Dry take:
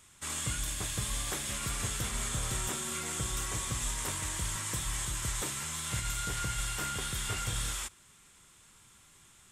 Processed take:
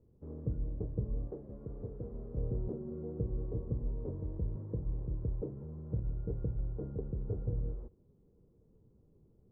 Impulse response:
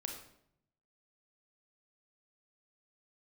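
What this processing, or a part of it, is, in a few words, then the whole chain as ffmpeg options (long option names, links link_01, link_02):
under water: -filter_complex "[0:a]asettb=1/sr,asplit=3[link_01][link_02][link_03];[link_01]atrim=end=1.274[link_04];[link_02]atrim=start=1.27:end=2.37,asetpts=PTS-STARTPTS,afade=type=in:duration=0.004:curve=qsin,afade=type=out:start_time=1.096:duration=0.004:curve=qsin,lowshelf=frequency=320:gain=-8.5[link_05];[link_03]atrim=start=2.366[link_06];[link_04][link_05]acrossfade=duration=0.004:curve1=hsin:curve2=qsin[link_07];[link_07][link_06]acrossfade=duration=0.004:curve1=qsin:curve2=hsin,lowpass=frequency=480:width=0.5412,lowpass=frequency=480:width=1.3066,equalizer=frequency=460:width_type=o:width=0.24:gain=10,volume=2dB"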